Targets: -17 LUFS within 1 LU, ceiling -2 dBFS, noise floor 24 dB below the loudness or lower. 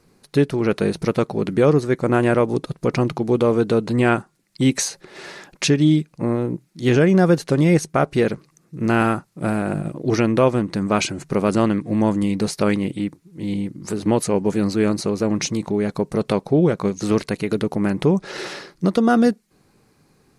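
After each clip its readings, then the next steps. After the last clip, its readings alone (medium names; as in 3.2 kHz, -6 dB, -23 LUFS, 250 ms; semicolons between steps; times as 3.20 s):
loudness -20.0 LUFS; peak level -3.5 dBFS; loudness target -17.0 LUFS
-> trim +3 dB; peak limiter -2 dBFS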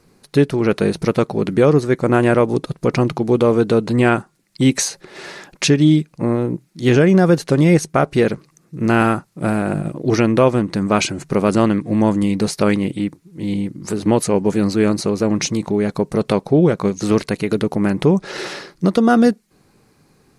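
loudness -17.5 LUFS; peak level -2.0 dBFS; noise floor -58 dBFS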